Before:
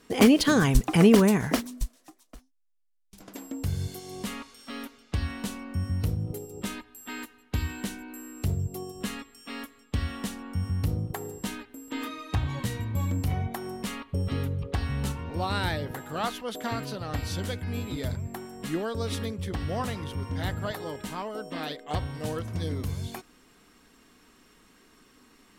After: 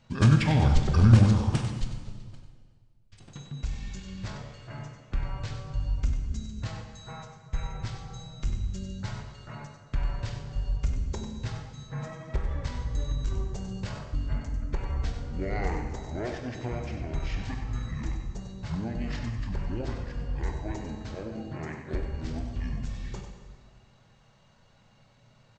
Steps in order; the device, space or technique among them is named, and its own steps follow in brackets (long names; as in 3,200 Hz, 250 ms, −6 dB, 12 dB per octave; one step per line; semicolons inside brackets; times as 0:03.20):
monster voice (pitch shifter −11.5 semitones; low-shelf EQ 130 Hz +5.5 dB; single-tap delay 96 ms −9 dB; convolution reverb RT60 1.8 s, pre-delay 19 ms, DRR 5 dB)
level −4.5 dB